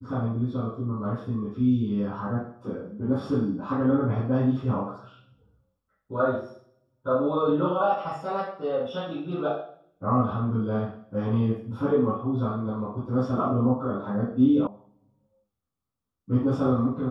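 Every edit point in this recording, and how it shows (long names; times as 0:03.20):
0:14.67: cut off before it has died away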